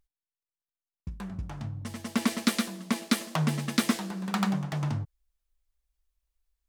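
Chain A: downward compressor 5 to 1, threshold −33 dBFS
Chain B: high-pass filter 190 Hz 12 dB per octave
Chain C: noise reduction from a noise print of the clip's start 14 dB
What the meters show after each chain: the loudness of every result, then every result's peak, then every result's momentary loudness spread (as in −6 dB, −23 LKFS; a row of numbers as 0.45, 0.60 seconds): −38.0, −31.5, −30.5 LKFS; −16.5, −11.5, −9.5 dBFS; 6, 15, 12 LU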